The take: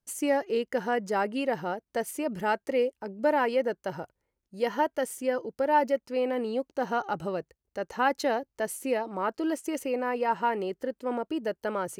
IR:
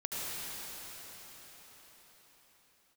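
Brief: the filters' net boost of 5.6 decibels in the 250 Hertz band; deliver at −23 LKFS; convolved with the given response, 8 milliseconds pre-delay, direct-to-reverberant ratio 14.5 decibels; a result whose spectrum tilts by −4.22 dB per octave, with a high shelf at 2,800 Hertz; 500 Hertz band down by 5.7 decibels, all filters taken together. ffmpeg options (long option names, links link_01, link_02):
-filter_complex "[0:a]equalizer=frequency=250:width_type=o:gain=9,equalizer=frequency=500:width_type=o:gain=-9,highshelf=frequency=2800:gain=9,asplit=2[link_01][link_02];[1:a]atrim=start_sample=2205,adelay=8[link_03];[link_02][link_03]afir=irnorm=-1:irlink=0,volume=-20dB[link_04];[link_01][link_04]amix=inputs=2:normalize=0,volume=6dB"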